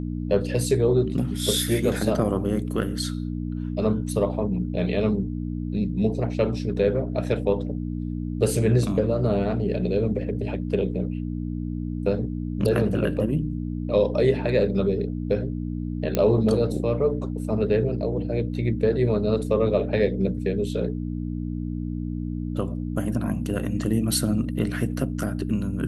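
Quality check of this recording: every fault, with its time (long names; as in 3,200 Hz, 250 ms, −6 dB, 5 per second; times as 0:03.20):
mains hum 60 Hz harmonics 5 −29 dBFS
0:16.15: click −9 dBFS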